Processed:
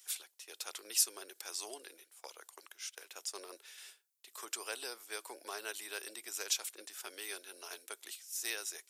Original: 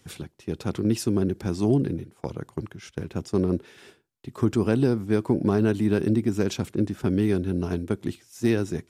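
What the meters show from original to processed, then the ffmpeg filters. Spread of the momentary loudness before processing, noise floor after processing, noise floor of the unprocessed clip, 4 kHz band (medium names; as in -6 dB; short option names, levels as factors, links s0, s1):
13 LU, -73 dBFS, -62 dBFS, +1.0 dB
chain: -af "highpass=f=470:w=0.5412,highpass=f=470:w=1.3066,aderivative,volume=1.88"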